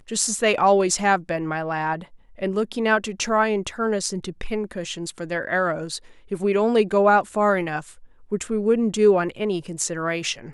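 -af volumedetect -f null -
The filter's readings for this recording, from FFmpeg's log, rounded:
mean_volume: -22.6 dB
max_volume: -2.7 dB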